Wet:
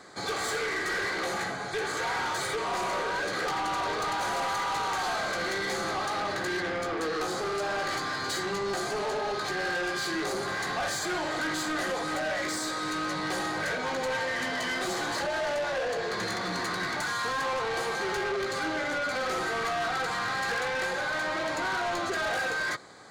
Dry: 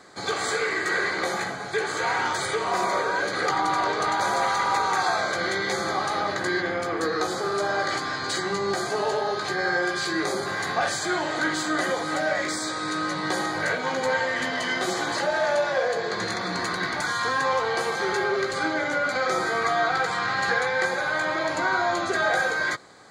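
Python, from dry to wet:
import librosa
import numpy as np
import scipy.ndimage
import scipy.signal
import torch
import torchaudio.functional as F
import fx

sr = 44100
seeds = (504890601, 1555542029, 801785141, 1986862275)

y = 10.0 ** (-27.0 / 20.0) * np.tanh(x / 10.0 ** (-27.0 / 20.0))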